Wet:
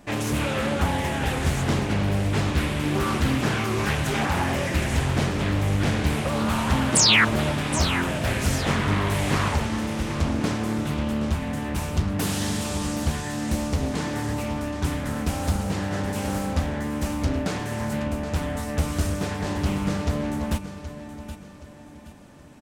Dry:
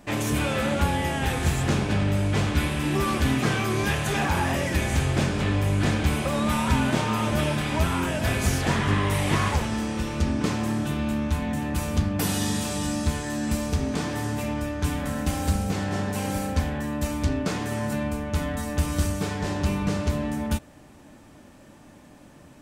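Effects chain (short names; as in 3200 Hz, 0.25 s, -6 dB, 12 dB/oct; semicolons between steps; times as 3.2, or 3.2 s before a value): painted sound fall, 6.95–7.25, 1400–9500 Hz -17 dBFS; feedback echo 0.773 s, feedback 36%, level -11.5 dB; Doppler distortion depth 0.68 ms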